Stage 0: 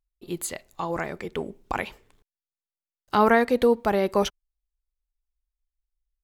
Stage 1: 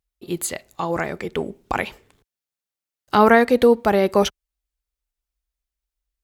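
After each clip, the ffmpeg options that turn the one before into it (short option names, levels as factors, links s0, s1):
-af "highpass=48,equalizer=f=1000:w=5.1:g=-2.5,volume=1.88"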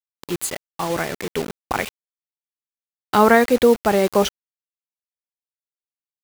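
-af "acrusher=bits=4:mix=0:aa=0.000001"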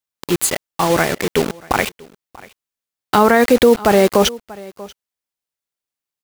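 -af "aecho=1:1:637:0.0631,alimiter=level_in=2.82:limit=0.891:release=50:level=0:latency=1,volume=0.891"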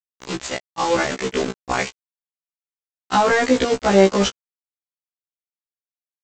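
-af "aresample=16000,aeval=exprs='val(0)*gte(abs(val(0)),0.133)':c=same,aresample=44100,afftfilt=real='re*1.73*eq(mod(b,3),0)':imag='im*1.73*eq(mod(b,3),0)':win_size=2048:overlap=0.75,volume=0.841"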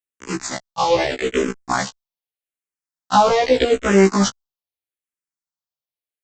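-filter_complex "[0:a]asplit=2[s0][s1];[s1]afreqshift=-0.81[s2];[s0][s2]amix=inputs=2:normalize=1,volume=1.58"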